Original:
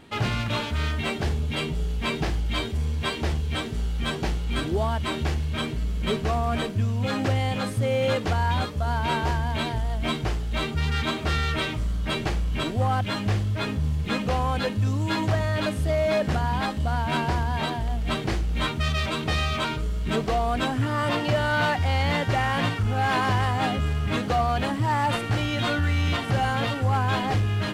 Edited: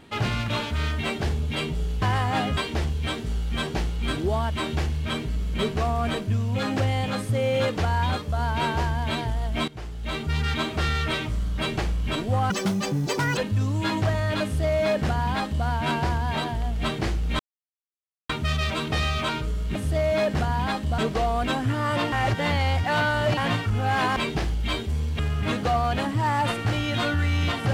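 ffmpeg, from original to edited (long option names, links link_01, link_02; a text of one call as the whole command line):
ffmpeg -i in.wav -filter_complex "[0:a]asplit=13[link_01][link_02][link_03][link_04][link_05][link_06][link_07][link_08][link_09][link_10][link_11][link_12][link_13];[link_01]atrim=end=2.022[link_14];[link_02]atrim=start=23.288:end=23.842[link_15];[link_03]atrim=start=3.048:end=10.16,asetpts=PTS-STARTPTS,afade=type=out:start_time=7.108:duration=0.004:curve=hsin:silence=0.149624[link_16];[link_04]atrim=start=10.16:end=12.984,asetpts=PTS-STARTPTS,afade=type=in:duration=0.65:silence=0.149624[link_17];[link_05]atrim=start=12.98:end=14.63,asetpts=PTS-STARTPTS,asetrate=83349,aresample=44100[link_18];[link_06]atrim=start=14.626:end=18.65,asetpts=PTS-STARTPTS,afade=type=out:start_time=4.02:duration=0.004:curve=hsin,apad=pad_dur=0.9[link_19];[link_07]atrim=start=18.65:end=20.112,asetpts=PTS-STARTPTS,afade=type=in:duration=0.004:curve=hsin[link_20];[link_08]atrim=start=15.688:end=16.922[link_21];[link_09]atrim=start=20.108:end=21.252[link_22];[link_10]atrim=start=21.248:end=22.502,asetpts=PTS-STARTPTS,areverse[link_23];[link_11]atrim=start=22.498:end=23.292[link_24];[link_12]atrim=start=2.018:end=3.052[link_25];[link_13]atrim=start=23.838[link_26];[link_14][link_15]acrossfade=duration=0.004:curve1=hsin:curve2=hsin[link_27];[link_16][link_17]concat=n=2:v=0:a=1[link_28];[link_27][link_28]acrossfade=duration=0.004:curve1=hsin:curve2=hsin[link_29];[link_29][link_18]acrossfade=duration=0.004:curve1=hsin:curve2=hsin[link_30];[link_19][link_20]concat=n=2:v=0:a=1[link_31];[link_30][link_31]acrossfade=duration=0.004:curve1=hsin:curve2=hsin[link_32];[link_32][link_21]acrossfade=duration=0.004:curve1=hsin:curve2=hsin[link_33];[link_33][link_22]acrossfade=duration=0.004:curve1=hsin:curve2=hsin[link_34];[link_34][link_23]acrossfade=duration=0.004:curve1=hsin:curve2=hsin[link_35];[link_35][link_24]acrossfade=duration=0.004:curve1=hsin:curve2=hsin[link_36];[link_36][link_25]acrossfade=duration=0.004:curve1=hsin:curve2=hsin[link_37];[link_37][link_26]acrossfade=duration=0.004:curve1=hsin:curve2=hsin" out.wav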